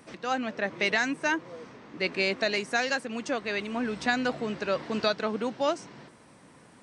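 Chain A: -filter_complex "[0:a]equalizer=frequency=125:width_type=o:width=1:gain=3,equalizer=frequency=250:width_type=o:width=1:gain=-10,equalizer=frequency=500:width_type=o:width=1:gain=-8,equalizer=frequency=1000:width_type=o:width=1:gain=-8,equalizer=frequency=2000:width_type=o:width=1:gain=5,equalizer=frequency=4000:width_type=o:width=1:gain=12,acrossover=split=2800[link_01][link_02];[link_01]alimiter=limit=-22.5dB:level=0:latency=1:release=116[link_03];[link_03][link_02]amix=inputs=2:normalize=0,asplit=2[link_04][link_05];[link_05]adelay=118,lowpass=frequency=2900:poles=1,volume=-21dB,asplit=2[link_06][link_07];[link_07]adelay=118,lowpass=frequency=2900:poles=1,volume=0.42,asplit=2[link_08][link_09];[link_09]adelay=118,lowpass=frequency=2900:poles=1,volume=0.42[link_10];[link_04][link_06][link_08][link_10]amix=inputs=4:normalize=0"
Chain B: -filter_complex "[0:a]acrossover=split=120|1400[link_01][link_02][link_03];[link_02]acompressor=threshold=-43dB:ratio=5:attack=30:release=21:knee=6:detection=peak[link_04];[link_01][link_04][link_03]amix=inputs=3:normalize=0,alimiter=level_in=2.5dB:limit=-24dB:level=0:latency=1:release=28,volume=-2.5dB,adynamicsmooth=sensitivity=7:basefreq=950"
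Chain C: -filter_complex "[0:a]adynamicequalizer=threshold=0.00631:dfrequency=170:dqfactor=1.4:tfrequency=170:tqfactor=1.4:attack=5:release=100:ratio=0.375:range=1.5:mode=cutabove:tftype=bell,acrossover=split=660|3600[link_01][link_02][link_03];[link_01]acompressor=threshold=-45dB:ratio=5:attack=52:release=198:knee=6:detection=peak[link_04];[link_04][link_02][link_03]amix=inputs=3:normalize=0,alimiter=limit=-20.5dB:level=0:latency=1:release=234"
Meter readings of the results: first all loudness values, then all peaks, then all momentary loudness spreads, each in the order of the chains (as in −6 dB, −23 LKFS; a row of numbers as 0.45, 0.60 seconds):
−27.0, −38.5, −34.0 LKFS; −9.5, −27.0, −20.5 dBFS; 11, 12, 11 LU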